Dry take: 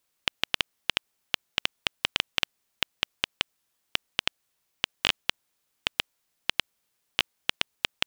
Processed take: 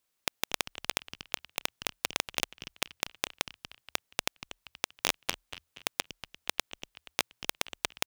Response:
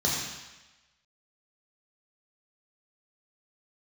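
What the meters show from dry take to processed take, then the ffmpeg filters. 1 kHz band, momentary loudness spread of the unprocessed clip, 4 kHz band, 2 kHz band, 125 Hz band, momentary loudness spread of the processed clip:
0.0 dB, 6 LU, −7.0 dB, −5.0 dB, −3.0 dB, 9 LU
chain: -filter_complex "[0:a]asplit=5[link_01][link_02][link_03][link_04][link_05];[link_02]adelay=238,afreqshift=-41,volume=-13dB[link_06];[link_03]adelay=476,afreqshift=-82,volume=-20.7dB[link_07];[link_04]adelay=714,afreqshift=-123,volume=-28.5dB[link_08];[link_05]adelay=952,afreqshift=-164,volume=-36.2dB[link_09];[link_01][link_06][link_07][link_08][link_09]amix=inputs=5:normalize=0,aeval=exprs='0.75*(cos(1*acos(clip(val(0)/0.75,-1,1)))-cos(1*PI/2))+0.335*(cos(2*acos(clip(val(0)/0.75,-1,1)))-cos(2*PI/2))+0.299*(cos(6*acos(clip(val(0)/0.75,-1,1)))-cos(6*PI/2))+0.299*(cos(7*acos(clip(val(0)/0.75,-1,1)))-cos(7*PI/2))+0.376*(cos(8*acos(clip(val(0)/0.75,-1,1)))-cos(8*PI/2))':channel_layout=same,volume=-8.5dB"

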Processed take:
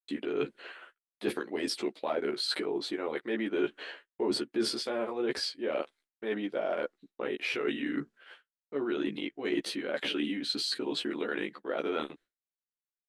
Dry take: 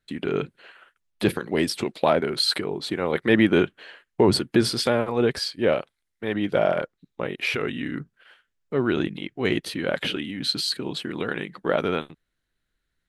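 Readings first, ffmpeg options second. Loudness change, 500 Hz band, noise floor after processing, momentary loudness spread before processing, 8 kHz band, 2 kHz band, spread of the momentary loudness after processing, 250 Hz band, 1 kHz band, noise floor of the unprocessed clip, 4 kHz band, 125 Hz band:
−9.0 dB, −8.5 dB, below −85 dBFS, 10 LU, −8.0 dB, −8.5 dB, 8 LU, −8.5 dB, −10.0 dB, −79 dBFS, −7.5 dB, −20.0 dB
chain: -filter_complex "[0:a]agate=range=-33dB:threshold=-50dB:ratio=3:detection=peak,lowpass=9500,lowshelf=frequency=200:width_type=q:width=1.5:gain=-12.5,areverse,acompressor=threshold=-31dB:ratio=6,areverse,asplit=2[link_01][link_02];[link_02]adelay=14,volume=-3dB[link_03];[link_01][link_03]amix=inputs=2:normalize=0"

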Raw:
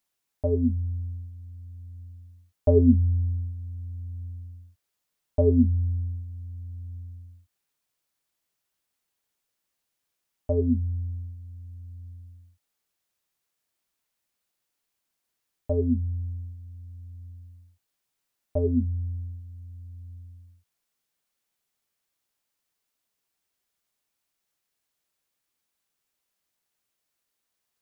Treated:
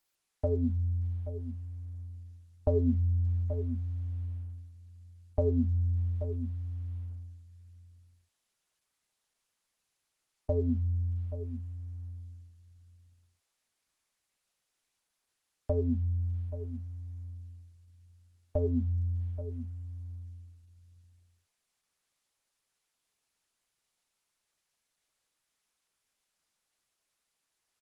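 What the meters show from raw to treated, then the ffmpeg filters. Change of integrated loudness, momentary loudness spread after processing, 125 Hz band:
−7.0 dB, 18 LU, −3.5 dB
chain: -af "equalizer=frequency=230:width=0.54:gain=-4.5,aecho=1:1:828:0.141,acompressor=threshold=-30dB:ratio=2.5,volume=2.5dB" -ar 48000 -c:a libopus -b:a 16k

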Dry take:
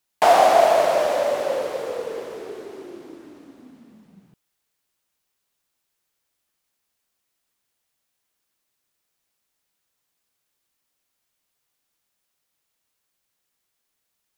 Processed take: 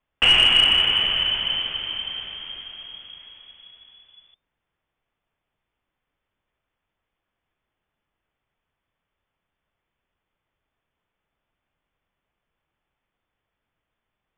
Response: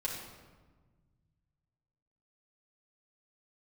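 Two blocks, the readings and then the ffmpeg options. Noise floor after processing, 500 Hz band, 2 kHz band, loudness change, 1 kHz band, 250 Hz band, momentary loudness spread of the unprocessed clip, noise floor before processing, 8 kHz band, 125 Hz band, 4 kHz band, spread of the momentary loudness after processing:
−83 dBFS, −22.5 dB, +6.0 dB, +2.0 dB, −16.0 dB, −6.0 dB, 21 LU, −77 dBFS, can't be measured, +6.5 dB, +19.5 dB, 21 LU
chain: -af "lowpass=frequency=3100:width_type=q:width=0.5098,lowpass=frequency=3100:width_type=q:width=0.6013,lowpass=frequency=3100:width_type=q:width=0.9,lowpass=frequency=3100:width_type=q:width=2.563,afreqshift=-3600,aemphasis=mode=reproduction:type=riaa,acontrast=86,volume=-3.5dB"

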